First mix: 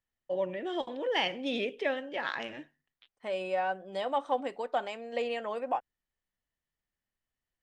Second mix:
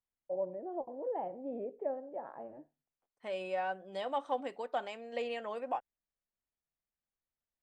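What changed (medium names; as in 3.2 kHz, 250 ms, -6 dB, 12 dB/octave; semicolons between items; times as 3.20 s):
first voice: add four-pole ladder low-pass 860 Hz, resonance 45%; second voice -4.5 dB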